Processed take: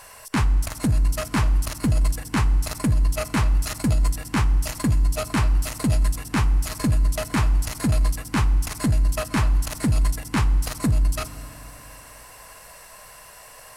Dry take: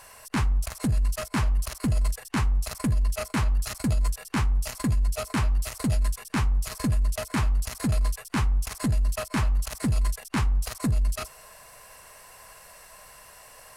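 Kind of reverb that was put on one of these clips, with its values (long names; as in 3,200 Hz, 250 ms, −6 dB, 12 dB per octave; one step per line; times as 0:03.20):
feedback delay network reverb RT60 3.2 s, high-frequency decay 0.65×, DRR 14 dB
level +4 dB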